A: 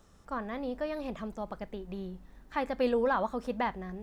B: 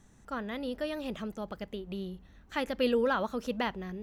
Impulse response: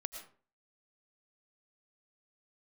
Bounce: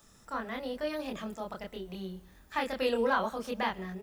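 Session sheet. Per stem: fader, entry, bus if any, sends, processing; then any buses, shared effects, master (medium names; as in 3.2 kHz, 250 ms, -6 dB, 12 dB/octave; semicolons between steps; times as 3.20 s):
-1.5 dB, 0.00 s, no send, drifting ripple filter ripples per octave 2, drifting +0.8 Hz, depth 6 dB; tilt EQ +3 dB/octave
-6.0 dB, 26 ms, send -7.5 dB, none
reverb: on, RT60 0.40 s, pre-delay 70 ms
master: none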